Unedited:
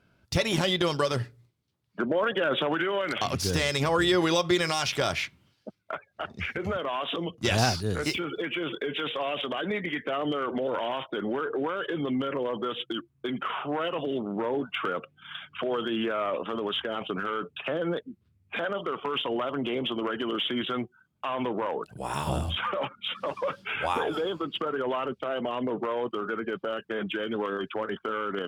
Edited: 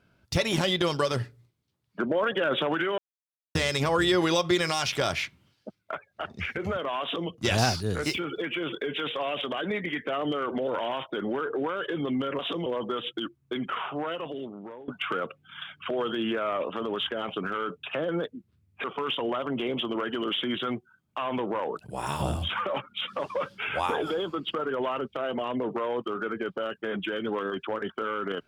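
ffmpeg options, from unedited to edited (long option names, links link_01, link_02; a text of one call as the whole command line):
ffmpeg -i in.wav -filter_complex "[0:a]asplit=7[link_01][link_02][link_03][link_04][link_05][link_06][link_07];[link_01]atrim=end=2.98,asetpts=PTS-STARTPTS,afade=type=out:start_time=2.976:duration=0.004:curve=hsin[link_08];[link_02]atrim=start=2.98:end=3.55,asetpts=PTS-STARTPTS,volume=0[link_09];[link_03]atrim=start=3.55:end=12.392,asetpts=PTS-STARTPTS,afade=type=in:duration=0.004:curve=hsin[link_10];[link_04]atrim=start=7.018:end=7.292[link_11];[link_05]atrim=start=12.388:end=14.61,asetpts=PTS-STARTPTS,afade=type=out:start_time=1.102:duration=1.12:silence=0.0944061[link_12];[link_06]atrim=start=14.61:end=18.572,asetpts=PTS-STARTPTS,afade=type=in:duration=0.004:curve=hsin:silence=0.0944061[link_13];[link_07]atrim=start=18.908[link_14];[link_08][link_09][link_10]concat=n=3:v=0:a=1[link_15];[link_15][link_11]acrossfade=duration=0.004:curve1=hsin:curve2=hsin[link_16];[link_12][link_13]concat=n=2:v=0:a=1[link_17];[link_16][link_17]acrossfade=duration=0.004:curve1=hsin:curve2=hsin[link_18];[link_18][link_14]acrossfade=duration=0.004:curve1=hsin:curve2=hsin" out.wav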